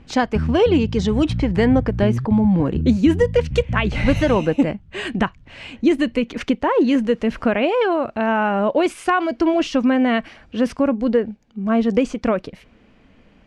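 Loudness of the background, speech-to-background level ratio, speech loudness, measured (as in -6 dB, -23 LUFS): -26.5 LUFS, 7.0 dB, -19.5 LUFS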